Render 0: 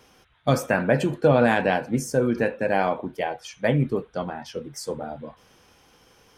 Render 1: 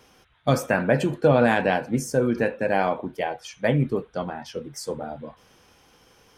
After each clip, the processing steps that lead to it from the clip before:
no processing that can be heard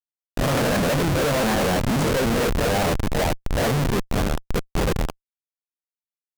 peak hold with a rise ahead of every peak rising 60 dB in 0.44 s
comparator with hysteresis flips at −25.5 dBFS
pitch modulation by a square or saw wave saw up 4.9 Hz, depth 160 cents
level +3 dB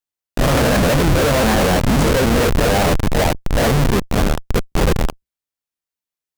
sub-octave generator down 2 octaves, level −3 dB
level +5.5 dB

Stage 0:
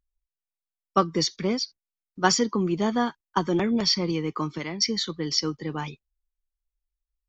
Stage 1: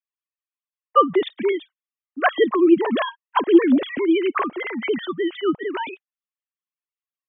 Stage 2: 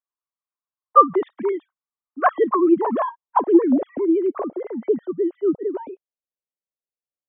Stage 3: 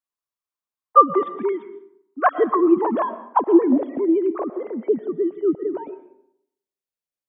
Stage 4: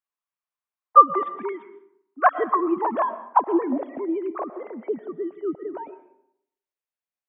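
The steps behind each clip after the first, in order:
three sine waves on the formant tracks; level +6 dB
low-pass filter sweep 1,100 Hz → 550 Hz, 0:02.55–0:04.68; level −2.5 dB
comb and all-pass reverb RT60 0.74 s, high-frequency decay 0.6×, pre-delay 80 ms, DRR 13 dB
flat-topped bell 1,300 Hz +8.5 dB 2.5 octaves; level −8 dB

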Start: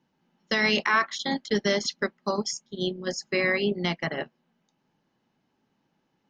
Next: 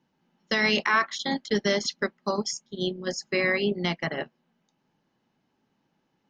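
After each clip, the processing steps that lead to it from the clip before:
no processing that can be heard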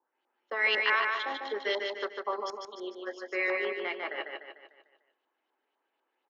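Butterworth high-pass 340 Hz 36 dB per octave
auto-filter low-pass saw up 4 Hz 910–3,800 Hz
repeating echo 149 ms, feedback 47%, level −4 dB
level −8 dB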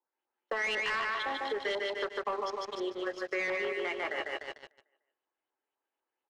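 leveller curve on the samples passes 3
downward compressor 4 to 1, threshold −28 dBFS, peak gain reduction 9.5 dB
high-frequency loss of the air 67 metres
level −3.5 dB

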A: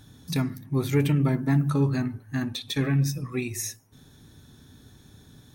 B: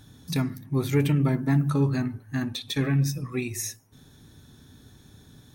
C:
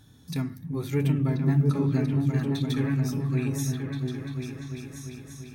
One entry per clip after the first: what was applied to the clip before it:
no processing that can be heard
harmonic and percussive parts rebalanced percussive −4 dB; on a send: echo whose low-pass opens from repeat to repeat 344 ms, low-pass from 200 Hz, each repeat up 2 octaves, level 0 dB; on the sum: level −3 dB

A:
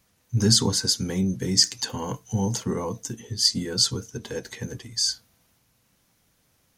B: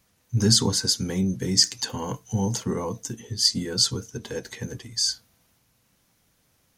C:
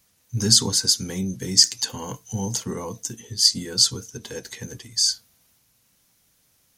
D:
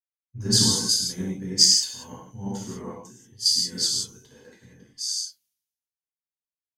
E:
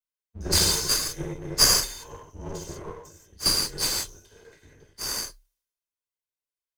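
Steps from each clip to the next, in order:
no processing that can be heard
high-shelf EQ 3,000 Hz +9 dB; level −3 dB
reverb whose tail is shaped and stops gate 210 ms flat, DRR −5 dB; multiband upward and downward expander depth 100%; level −11.5 dB
lower of the sound and its delayed copy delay 1.9 ms; frequency shifter −34 Hz

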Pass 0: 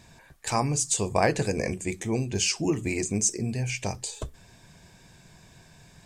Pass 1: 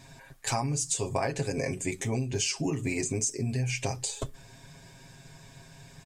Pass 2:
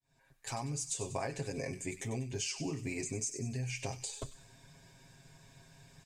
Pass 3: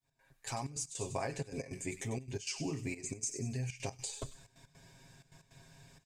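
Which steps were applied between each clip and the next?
comb filter 7.4 ms, depth 79%; downward compressor 6 to 1, threshold −26 dBFS, peak gain reduction 11 dB
fade in at the beginning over 0.70 s; delay with a high-pass on its return 96 ms, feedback 47%, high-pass 2,100 Hz, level −10 dB; level −8 dB
gate pattern "x.xxxxx." 158 BPM −12 dB

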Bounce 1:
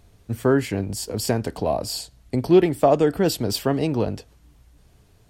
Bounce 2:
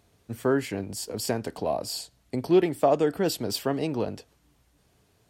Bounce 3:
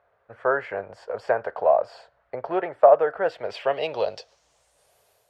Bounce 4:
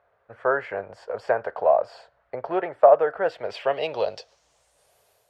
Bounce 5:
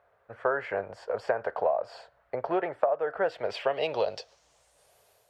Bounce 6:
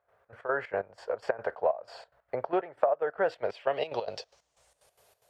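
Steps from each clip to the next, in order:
high-pass filter 190 Hz 6 dB per octave; level −4 dB
low shelf with overshoot 390 Hz −12.5 dB, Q 3; automatic gain control gain up to 4.5 dB; low-pass filter sweep 1,500 Hz → 12,000 Hz, 0:03.20–0:04.98; level −2.5 dB
no processing that can be heard
downward compressor 16 to 1, threshold −22 dBFS, peak gain reduction 14 dB
gate pattern ".xx.x.xx.x." 184 BPM −12 dB

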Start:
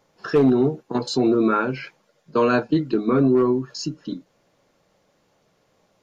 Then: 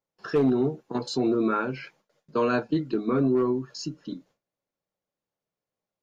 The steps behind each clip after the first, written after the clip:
noise gate with hold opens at −50 dBFS
level −5.5 dB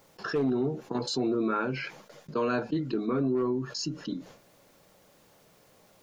envelope flattener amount 50%
level −6 dB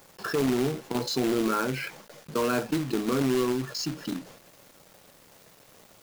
log-companded quantiser 4 bits
level +1.5 dB

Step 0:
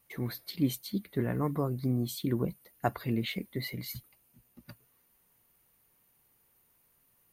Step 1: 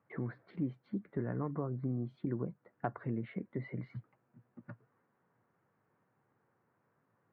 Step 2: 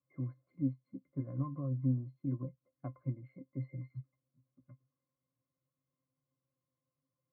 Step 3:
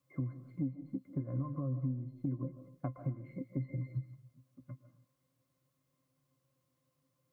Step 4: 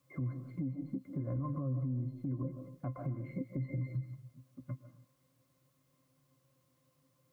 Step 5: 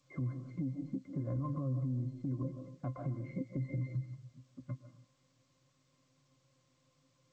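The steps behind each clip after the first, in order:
Chebyshev band-pass filter 110–1,600 Hz, order 3; downward compressor 2.5 to 1, threshold −39 dBFS, peak gain reduction 11 dB; level +2.5 dB
resonances in every octave C, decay 0.12 s; expander for the loud parts 1.5 to 1, over −59 dBFS; level +7.5 dB
downward compressor 6 to 1, threshold −43 dBFS, peak gain reduction 15.5 dB; on a send at −10 dB: convolution reverb, pre-delay 105 ms; on the sum: level +9.5 dB
brickwall limiter −35.5 dBFS, peak gain reduction 12 dB; level +6 dB
G.722 64 kbit/s 16,000 Hz

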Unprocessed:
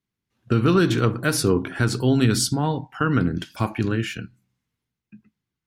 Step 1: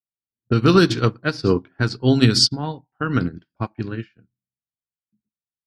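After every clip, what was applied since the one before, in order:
low-pass that shuts in the quiet parts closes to 410 Hz, open at −13.5 dBFS
parametric band 4,800 Hz +13 dB 0.48 octaves
expander for the loud parts 2.5 to 1, over −35 dBFS
level +5.5 dB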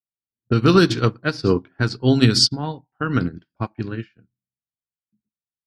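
no processing that can be heard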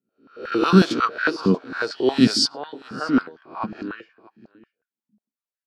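peak hold with a rise ahead of every peak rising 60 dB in 0.44 s
single-tap delay 634 ms −22 dB
high-pass on a step sequencer 11 Hz 200–1,600 Hz
level −6 dB

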